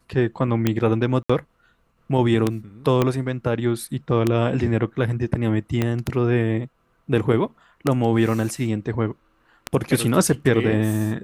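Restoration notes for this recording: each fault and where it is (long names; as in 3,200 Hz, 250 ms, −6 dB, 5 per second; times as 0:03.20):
scratch tick 33 1/3 rpm −6 dBFS
0:01.23–0:01.29: drop-out 65 ms
0:03.02: click −7 dBFS
0:05.82: click −9 dBFS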